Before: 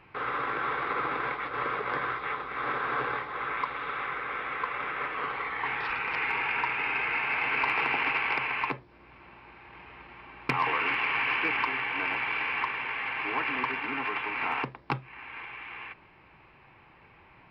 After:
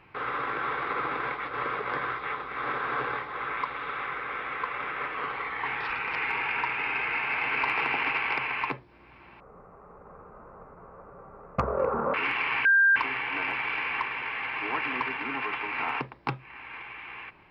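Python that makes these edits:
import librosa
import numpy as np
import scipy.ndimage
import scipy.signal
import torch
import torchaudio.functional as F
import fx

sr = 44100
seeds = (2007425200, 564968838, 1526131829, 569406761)

y = fx.edit(x, sr, fx.speed_span(start_s=9.4, length_s=1.37, speed=0.5),
    fx.bleep(start_s=11.28, length_s=0.31, hz=1590.0, db=-16.5), tone=tone)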